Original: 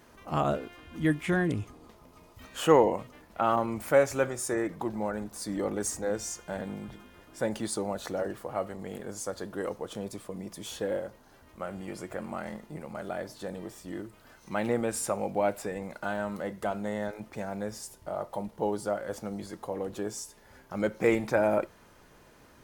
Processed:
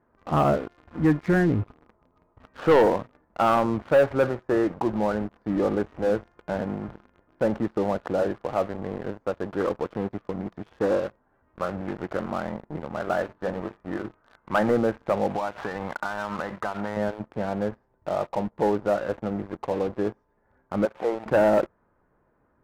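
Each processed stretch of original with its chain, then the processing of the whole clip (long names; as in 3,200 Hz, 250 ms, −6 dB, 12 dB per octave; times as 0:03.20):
0:09.60–0:12.33: high-shelf EQ 2,500 Hz +10 dB + highs frequency-modulated by the lows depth 0.3 ms
0:13.00–0:14.71: parametric band 1,400 Hz +6.5 dB 1.8 octaves + mains-hum notches 50/100/150/200/250/300/350/400/450 Hz
0:15.30–0:16.97: flat-topped bell 1,900 Hz +11.5 dB 2.8 octaves + downward compressor 12 to 1, threshold −31 dBFS
0:20.85–0:21.26: spike at every zero crossing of −26 dBFS + resonant band-pass 790 Hz, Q 2.2 + upward compression, threshold −36 dBFS
whole clip: low-pass filter 1,600 Hz 24 dB per octave; leveller curve on the samples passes 3; level −3.5 dB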